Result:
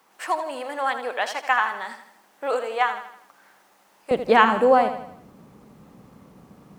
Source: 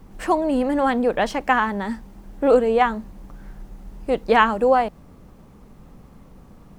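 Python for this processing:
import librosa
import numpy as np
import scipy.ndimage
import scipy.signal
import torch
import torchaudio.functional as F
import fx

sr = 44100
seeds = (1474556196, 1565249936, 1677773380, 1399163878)

y = fx.highpass(x, sr, hz=fx.steps((0.0, 880.0), (4.11, 130.0)), slope=12)
y = fx.echo_feedback(y, sr, ms=81, feedback_pct=46, wet_db=-10.0)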